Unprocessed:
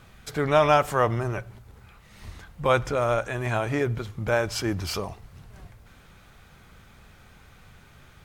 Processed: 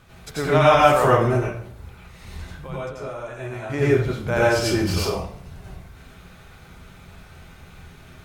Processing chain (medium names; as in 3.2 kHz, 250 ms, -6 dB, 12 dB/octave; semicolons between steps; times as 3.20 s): 1.37–3.70 s: compression 8:1, threshold -36 dBFS, peak gain reduction 20 dB; reverberation RT60 0.55 s, pre-delay 83 ms, DRR -7 dB; trim -1.5 dB